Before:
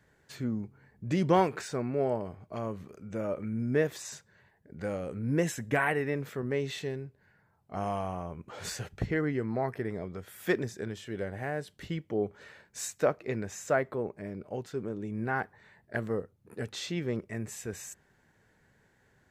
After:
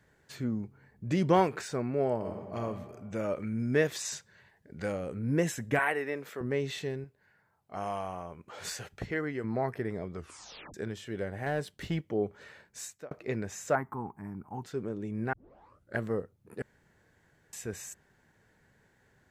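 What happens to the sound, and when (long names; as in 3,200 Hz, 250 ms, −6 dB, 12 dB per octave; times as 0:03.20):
0:02.16–0:02.59: thrown reverb, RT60 1.4 s, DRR 1 dB
0:03.13–0:04.92: parametric band 4,500 Hz +6.5 dB 2.8 octaves
0:05.79–0:06.41: Bessel high-pass filter 380 Hz
0:07.04–0:09.44: low-shelf EQ 340 Hz −8.5 dB
0:10.15: tape stop 0.59 s
0:11.46–0:12.01: leveller curve on the samples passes 1
0:12.63–0:13.11: fade out
0:13.75–0:14.63: drawn EQ curve 270 Hz 0 dB, 580 Hz −20 dB, 850 Hz +10 dB, 3,700 Hz −21 dB, 6,400 Hz −7 dB, 14,000 Hz +6 dB
0:15.33: tape start 0.64 s
0:16.62–0:17.53: fill with room tone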